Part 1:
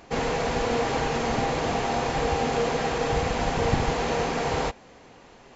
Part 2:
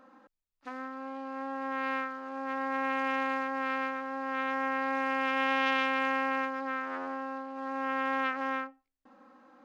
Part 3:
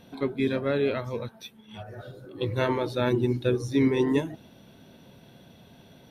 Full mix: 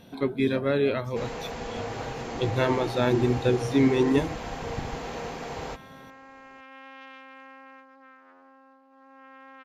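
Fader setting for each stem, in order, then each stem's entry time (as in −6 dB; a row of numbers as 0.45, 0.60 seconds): −9.5, −18.0, +1.5 decibels; 1.05, 1.35, 0.00 seconds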